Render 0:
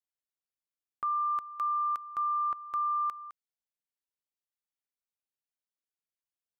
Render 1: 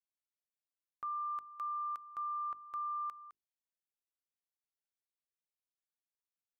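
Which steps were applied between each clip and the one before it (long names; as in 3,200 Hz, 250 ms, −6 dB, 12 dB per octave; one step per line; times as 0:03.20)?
mains-hum notches 50/100/150/200/250/300/350/400 Hz
level −8.5 dB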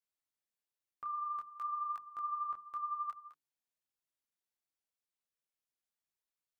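micro pitch shift up and down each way 17 cents
level +3.5 dB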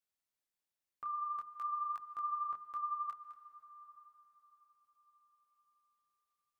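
convolution reverb RT60 5.3 s, pre-delay 112 ms, DRR 13 dB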